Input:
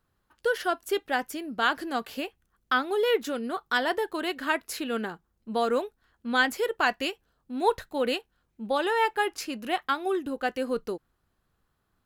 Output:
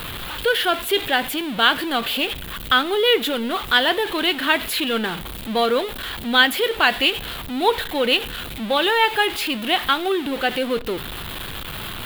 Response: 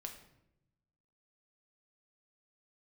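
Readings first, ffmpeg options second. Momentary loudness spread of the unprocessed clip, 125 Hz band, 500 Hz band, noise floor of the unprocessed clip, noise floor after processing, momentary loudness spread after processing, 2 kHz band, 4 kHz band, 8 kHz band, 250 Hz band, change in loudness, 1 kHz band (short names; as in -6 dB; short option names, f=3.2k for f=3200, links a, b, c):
11 LU, n/a, +6.0 dB, -75 dBFS, -32 dBFS, 12 LU, +9.0 dB, +15.5 dB, +9.0 dB, +7.0 dB, +8.0 dB, +6.5 dB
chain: -filter_complex "[0:a]aeval=exprs='val(0)+0.5*0.0282*sgn(val(0))':c=same,crystalizer=i=2.5:c=0,highshelf=f=4.5k:t=q:w=3:g=-9.5,asplit=2[a][b];[1:a]atrim=start_sample=2205[c];[b][c]afir=irnorm=-1:irlink=0,volume=-8.5dB[d];[a][d]amix=inputs=2:normalize=0,volume=2dB"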